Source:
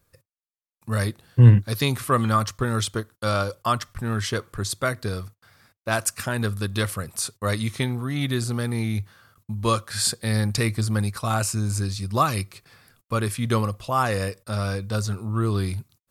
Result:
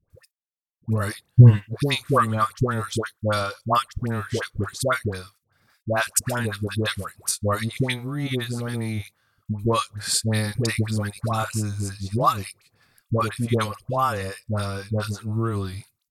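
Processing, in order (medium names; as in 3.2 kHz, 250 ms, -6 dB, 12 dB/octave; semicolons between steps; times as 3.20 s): transient shaper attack +9 dB, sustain -10 dB; phase dispersion highs, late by 102 ms, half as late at 830 Hz; trim -3 dB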